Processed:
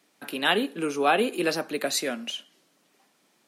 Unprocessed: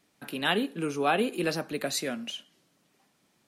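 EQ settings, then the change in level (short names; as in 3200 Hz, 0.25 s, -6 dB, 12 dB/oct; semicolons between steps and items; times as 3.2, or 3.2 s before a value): HPF 250 Hz 12 dB/oct; +4.0 dB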